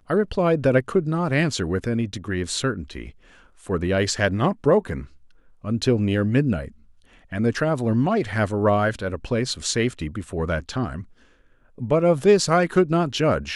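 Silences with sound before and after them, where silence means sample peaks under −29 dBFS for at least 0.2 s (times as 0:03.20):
0:03.08–0:03.67
0:05.03–0:05.65
0:06.68–0:07.32
0:11.01–0:11.81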